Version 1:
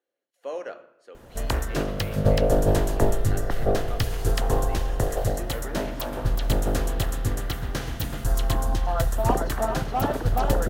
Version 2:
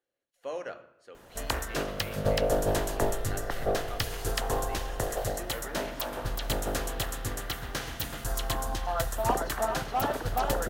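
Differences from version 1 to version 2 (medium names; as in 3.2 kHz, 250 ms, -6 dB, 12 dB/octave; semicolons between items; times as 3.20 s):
speech: remove high-pass 350 Hz 12 dB/octave; master: add bass shelf 440 Hz -10.5 dB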